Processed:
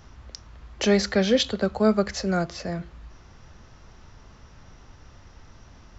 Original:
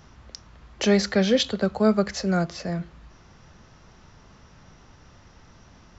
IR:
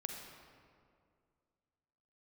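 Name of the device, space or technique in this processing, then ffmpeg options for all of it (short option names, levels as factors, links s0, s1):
low shelf boost with a cut just above: -af "lowshelf=f=79:g=7.5,equalizer=f=170:t=o:w=0.52:g=-4.5"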